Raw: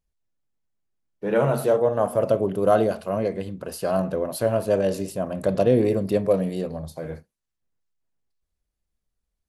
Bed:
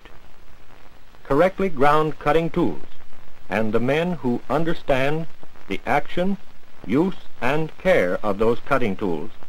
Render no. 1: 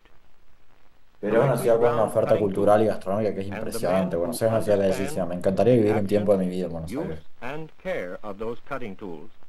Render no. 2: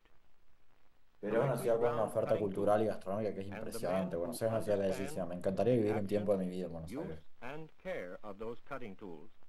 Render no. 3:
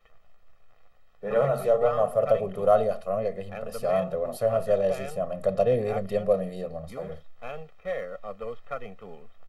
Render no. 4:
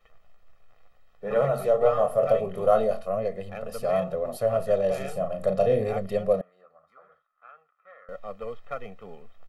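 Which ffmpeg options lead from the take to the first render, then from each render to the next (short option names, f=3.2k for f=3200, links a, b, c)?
-filter_complex "[1:a]volume=-12dB[a];[0:a][a]amix=inputs=2:normalize=0"
-af "volume=-12dB"
-af "equalizer=f=800:w=0.31:g=6,aecho=1:1:1.6:0.93"
-filter_complex "[0:a]asettb=1/sr,asplit=3[a][b][c];[a]atrim=end=1.774[d];[b]atrim=start=1.77:end=3.08,asetpts=PTS-STARTPTS,afade=t=in:d=0.004:c=qsin,afade=t=out:st=1.306:d=0.004:c=qsin,asplit=2[e][f];[f]adelay=23,volume=-6.5dB[g];[e][g]amix=inputs=2:normalize=0,atrim=end_sample=57771[h];[c]atrim=start=3.076[i];[d][h]acrossfade=d=0.004:c1=hsin:c2=qsin[j];[j][i]acrossfade=d=0.004:c1=qsin:c2=hsin,asettb=1/sr,asplit=3[k][l][m];[k]atrim=end=4.894[n];[l]atrim=start=4.89:end=5.89,asetpts=PTS-STARTPTS,afade=t=in:d=0.004:c=qsin,afade=t=out:st=0.996:d=0.004:c=qsin,asplit=2[o][p];[p]adelay=37,volume=-6.5dB[q];[o][q]amix=inputs=2:normalize=0,atrim=end_sample=44100[r];[m]atrim=start=5.886[s];[n][r]acrossfade=d=0.004:c1=hsin:c2=qsin[t];[t][s]acrossfade=d=0.004:c1=qsin:c2=hsin,asettb=1/sr,asplit=3[u][v][w];[u]atrim=end=6.414[x];[v]atrim=start=6.41:end=8.09,asetpts=PTS-STARTPTS,afade=t=in:d=0.004:c=qsin,afade=t=out:st=1.676:d=0.004:c=qsin,bandpass=f=1.3k:t=q:w=6.7[y];[w]atrim=start=8.086[z];[x][y]acrossfade=d=0.004:c1=hsin:c2=qsin[aa];[aa][z]acrossfade=d=0.004:c1=qsin:c2=hsin"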